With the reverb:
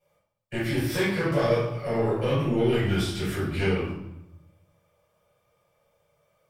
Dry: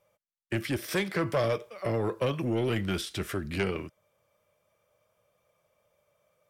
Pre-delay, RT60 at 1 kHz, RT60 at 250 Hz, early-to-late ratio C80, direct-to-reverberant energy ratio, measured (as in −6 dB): 6 ms, 0.90 s, 1.2 s, 4.5 dB, −11.5 dB